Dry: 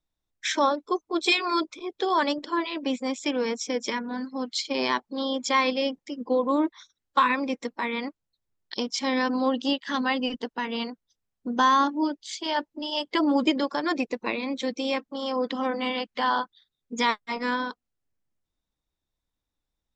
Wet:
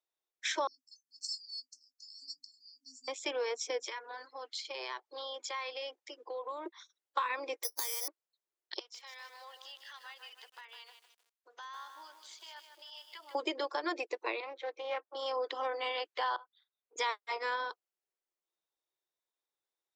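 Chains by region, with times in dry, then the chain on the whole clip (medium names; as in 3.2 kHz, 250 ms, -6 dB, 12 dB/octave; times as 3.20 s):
0.67–3.08 s: brick-wall FIR band-stop 250–4300 Hz + doubling 19 ms -12 dB
3.82–6.66 s: frequency weighting A + compression 4:1, threshold -32 dBFS
7.63–8.08 s: compression 3:1, threshold -35 dBFS + careless resampling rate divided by 8×, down filtered, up zero stuff
8.79–13.35 s: high-pass 1.3 kHz + compression 2.5:1, threshold -48 dBFS + bit-crushed delay 154 ms, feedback 55%, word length 9-bit, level -6 dB
14.40–15.15 s: band-pass 500–2000 Hz + loudspeaker Doppler distortion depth 0.17 ms
16.36–16.96 s: band-stop 1.8 kHz, Q 10 + compression 2.5:1, threshold -49 dBFS + band-pass 560–2700 Hz
whole clip: elliptic high-pass 350 Hz, stop band 40 dB; compression, threshold -25 dBFS; trim -4.5 dB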